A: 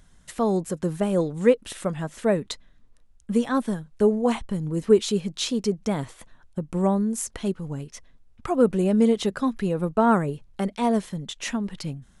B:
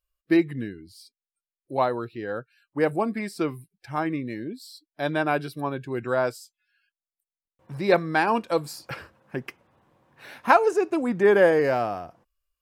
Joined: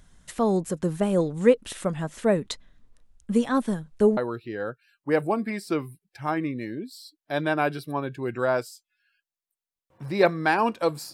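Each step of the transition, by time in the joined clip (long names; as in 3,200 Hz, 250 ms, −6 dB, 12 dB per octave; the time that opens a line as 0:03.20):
A
0:04.17: continue with B from 0:01.86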